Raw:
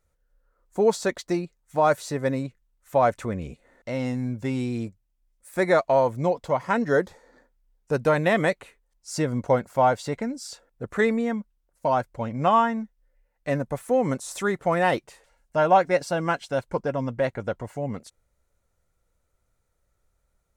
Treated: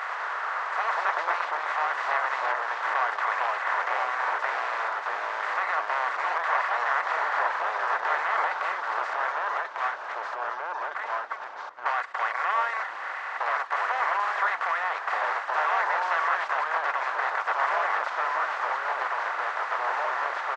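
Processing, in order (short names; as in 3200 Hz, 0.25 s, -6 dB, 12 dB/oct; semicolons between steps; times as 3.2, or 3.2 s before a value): per-bin compression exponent 0.2; reverb removal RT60 0.53 s; de-esser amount 65%; HPF 1200 Hz 24 dB/oct; 9.13–11.86 gate -23 dBFS, range -25 dB; echoes that change speed 94 ms, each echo -2 st, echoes 2; tape spacing loss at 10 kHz 37 dB; frequency-shifting echo 0.391 s, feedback 37%, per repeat -110 Hz, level -20.5 dB; gain +3.5 dB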